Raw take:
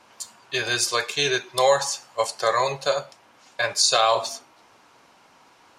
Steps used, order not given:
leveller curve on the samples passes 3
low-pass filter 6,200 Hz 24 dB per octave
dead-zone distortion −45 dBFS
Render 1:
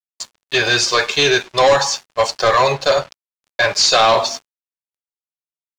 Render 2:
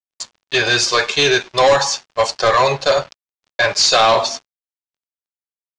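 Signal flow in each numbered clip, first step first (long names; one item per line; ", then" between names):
leveller curve on the samples, then low-pass filter, then dead-zone distortion
leveller curve on the samples, then dead-zone distortion, then low-pass filter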